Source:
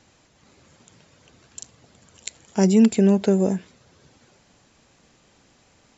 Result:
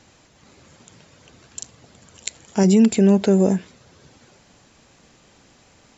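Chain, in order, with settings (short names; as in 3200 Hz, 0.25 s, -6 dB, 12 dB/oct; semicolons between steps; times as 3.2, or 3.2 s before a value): limiter -11 dBFS, peak gain reduction 5.5 dB; gain +4.5 dB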